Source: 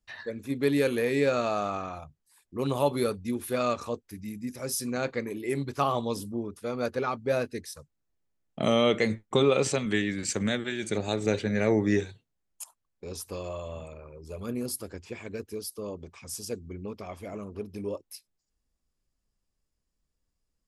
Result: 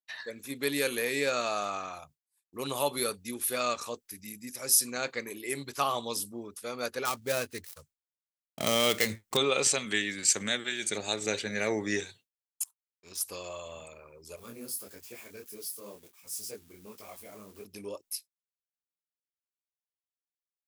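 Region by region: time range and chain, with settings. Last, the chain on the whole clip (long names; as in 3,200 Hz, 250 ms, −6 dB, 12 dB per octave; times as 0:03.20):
0:07.05–0:09.37: gap after every zero crossing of 0.098 ms + parametric band 86 Hz +10 dB 1.1 octaves
0:12.62–0:13.21: flat-topped bell 620 Hz −10 dB 1.1 octaves + power curve on the samples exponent 1.4
0:14.36–0:17.65: spike at every zero crossing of −38 dBFS + high-shelf EQ 2,600 Hz −8.5 dB + micro pitch shift up and down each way 51 cents
whole clip: downward expander −47 dBFS; spectral tilt +3.5 dB per octave; level −2 dB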